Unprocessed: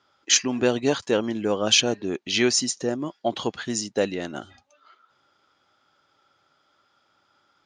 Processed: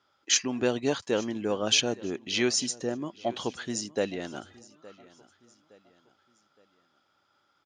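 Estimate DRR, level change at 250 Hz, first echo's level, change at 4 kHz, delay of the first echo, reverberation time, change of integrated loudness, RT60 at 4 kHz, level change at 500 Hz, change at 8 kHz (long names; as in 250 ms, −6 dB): no reverb audible, −5.0 dB, −21.0 dB, −5.0 dB, 866 ms, no reverb audible, −5.0 dB, no reverb audible, −5.0 dB, −5.0 dB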